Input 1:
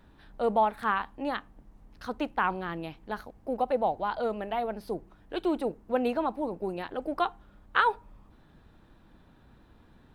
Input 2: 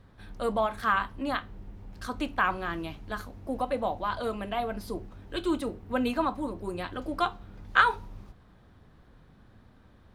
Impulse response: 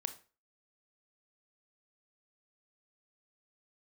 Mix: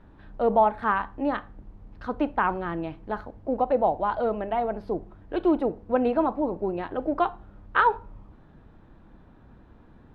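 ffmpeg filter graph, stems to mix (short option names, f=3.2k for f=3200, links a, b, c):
-filter_complex "[0:a]acrusher=bits=11:mix=0:aa=0.000001,volume=1.5dB,asplit=2[a][b];[b]volume=-3.5dB[c];[1:a]volume=-1,volume=-8.5dB[d];[2:a]atrim=start_sample=2205[e];[c][e]afir=irnorm=-1:irlink=0[f];[a][d][f]amix=inputs=3:normalize=0,lowpass=f=1.6k:p=1,aemphasis=mode=reproduction:type=50kf"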